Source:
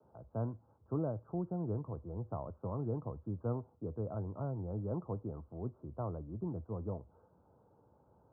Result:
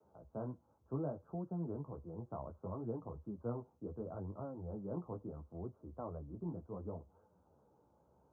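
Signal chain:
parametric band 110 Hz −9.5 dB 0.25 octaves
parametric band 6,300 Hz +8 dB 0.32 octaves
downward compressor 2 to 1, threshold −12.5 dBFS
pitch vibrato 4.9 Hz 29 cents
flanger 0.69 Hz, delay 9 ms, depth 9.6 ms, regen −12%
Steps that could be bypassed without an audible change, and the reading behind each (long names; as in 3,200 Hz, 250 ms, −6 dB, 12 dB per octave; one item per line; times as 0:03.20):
parametric band 6,300 Hz: nothing at its input above 1,400 Hz
downward compressor, threshold −12.5 dBFS: peak of its input −25.5 dBFS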